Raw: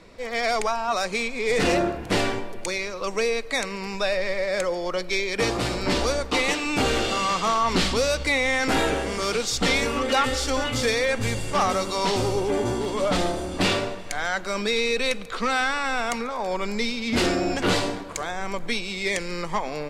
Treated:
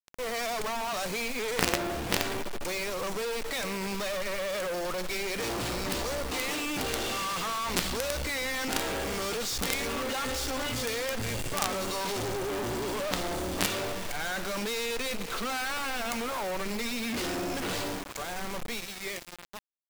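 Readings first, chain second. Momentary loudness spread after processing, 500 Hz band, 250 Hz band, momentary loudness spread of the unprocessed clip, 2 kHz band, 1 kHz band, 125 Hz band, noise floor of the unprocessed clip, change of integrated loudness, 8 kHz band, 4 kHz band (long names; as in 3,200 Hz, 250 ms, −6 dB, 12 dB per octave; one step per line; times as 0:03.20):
5 LU, −8.5 dB, −8.0 dB, 6 LU, −7.5 dB, −8.0 dB, −8.0 dB, −35 dBFS, −7.0 dB, −2.5 dB, −6.0 dB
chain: fade-out on the ending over 3.56 s
log-companded quantiser 2 bits
level −6.5 dB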